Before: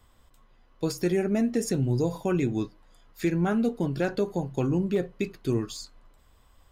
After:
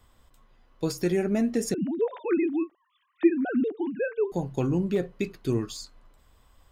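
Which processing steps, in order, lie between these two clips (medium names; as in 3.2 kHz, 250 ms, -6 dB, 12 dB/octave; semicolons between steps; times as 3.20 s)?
1.74–4.32 s: formants replaced by sine waves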